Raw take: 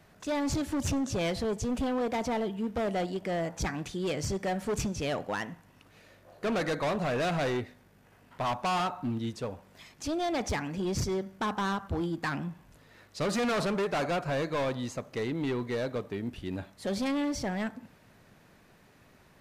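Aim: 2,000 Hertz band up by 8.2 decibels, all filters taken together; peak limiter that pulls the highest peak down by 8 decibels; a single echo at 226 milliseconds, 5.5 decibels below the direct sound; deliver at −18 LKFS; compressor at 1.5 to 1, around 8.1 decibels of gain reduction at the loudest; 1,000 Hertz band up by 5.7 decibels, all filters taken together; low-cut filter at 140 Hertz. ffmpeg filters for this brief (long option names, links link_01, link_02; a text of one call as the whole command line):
ffmpeg -i in.wav -af "highpass=140,equalizer=frequency=1000:width_type=o:gain=5.5,equalizer=frequency=2000:width_type=o:gain=8.5,acompressor=threshold=-44dB:ratio=1.5,alimiter=level_in=5dB:limit=-24dB:level=0:latency=1,volume=-5dB,aecho=1:1:226:0.531,volume=20.5dB" out.wav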